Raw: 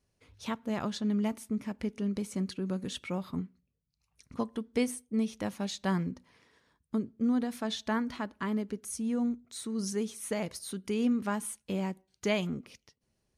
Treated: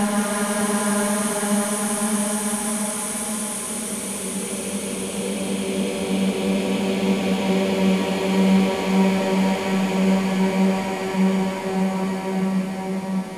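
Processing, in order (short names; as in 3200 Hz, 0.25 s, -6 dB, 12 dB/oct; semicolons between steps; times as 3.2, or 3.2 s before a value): per-bin compression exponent 0.6; in parallel at -10.5 dB: overloaded stage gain 24.5 dB; on the sum: Paulstretch 20×, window 0.50 s, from 11.37; split-band echo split 1300 Hz, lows 0.612 s, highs 0.178 s, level -4 dB; gain +6 dB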